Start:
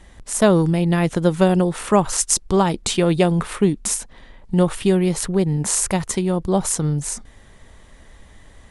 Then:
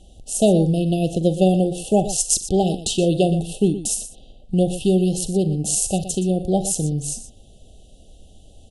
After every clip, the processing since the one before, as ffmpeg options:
-filter_complex "[0:a]asplit=2[a][b];[b]aecho=0:1:43|64|120:0.188|0.112|0.224[c];[a][c]amix=inputs=2:normalize=0,afftfilt=real='re*(1-between(b*sr/4096,810,2600))':imag='im*(1-between(b*sr/4096,810,2600))':win_size=4096:overlap=0.75,volume=-1dB"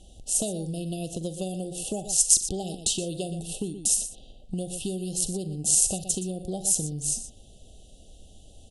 -filter_complex "[0:a]equalizer=f=7.8k:w=0.42:g=4.5,acrossover=split=5200[a][b];[a]acompressor=threshold=-26dB:ratio=6[c];[c][b]amix=inputs=2:normalize=0,volume=-3.5dB"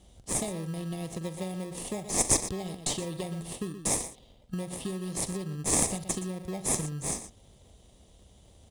-filter_complex "[0:a]highpass=55,equalizer=f=290:t=o:w=0.77:g=-4,asplit=2[a][b];[b]acrusher=samples=30:mix=1:aa=0.000001,volume=-3dB[c];[a][c]amix=inputs=2:normalize=0,volume=-6dB"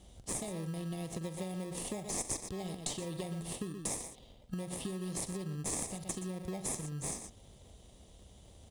-af "acompressor=threshold=-36dB:ratio=4"

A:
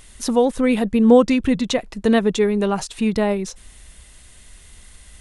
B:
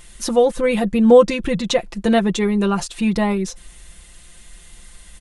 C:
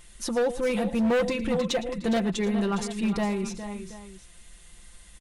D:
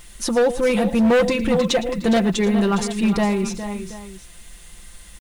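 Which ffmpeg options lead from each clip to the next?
-af "aecho=1:1:5.8:0.71"
-af "aecho=1:1:111|411|455|729:0.15|0.266|0.119|0.119,asoftclip=type=hard:threshold=-13dB,volume=-7.5dB"
-af "acrusher=bits=9:mix=0:aa=0.000001,volume=7.5dB"

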